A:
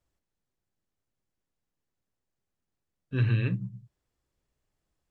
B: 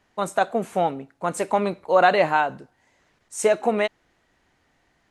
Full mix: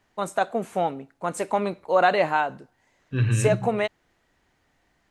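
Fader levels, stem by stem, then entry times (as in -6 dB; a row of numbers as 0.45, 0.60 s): +3.0, -2.5 dB; 0.00, 0.00 s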